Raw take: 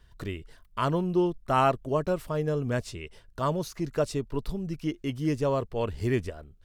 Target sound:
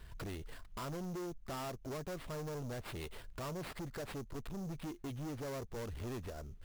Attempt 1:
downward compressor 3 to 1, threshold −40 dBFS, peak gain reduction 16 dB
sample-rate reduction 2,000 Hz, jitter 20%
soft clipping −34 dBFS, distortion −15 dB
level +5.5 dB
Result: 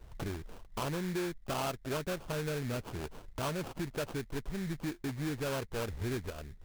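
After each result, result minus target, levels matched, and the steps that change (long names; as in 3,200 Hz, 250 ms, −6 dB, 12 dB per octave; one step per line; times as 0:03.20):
soft clipping: distortion −9 dB; sample-rate reduction: distortion +9 dB
change: soft clipping −45 dBFS, distortion −6 dB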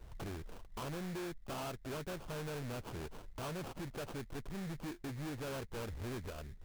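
sample-rate reduction: distortion +9 dB
change: sample-rate reduction 6,300 Hz, jitter 20%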